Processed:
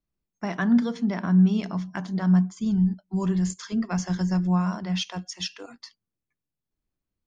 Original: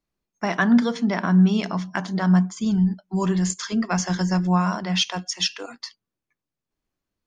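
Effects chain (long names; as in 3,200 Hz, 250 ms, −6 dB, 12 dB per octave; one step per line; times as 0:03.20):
low-shelf EQ 260 Hz +10 dB
level −8.5 dB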